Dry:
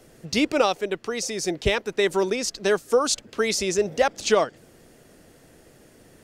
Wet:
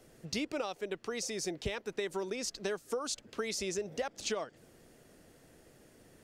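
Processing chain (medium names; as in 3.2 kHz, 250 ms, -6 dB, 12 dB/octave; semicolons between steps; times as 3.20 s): compression 6:1, threshold -25 dBFS, peak gain reduction 11 dB; trim -7.5 dB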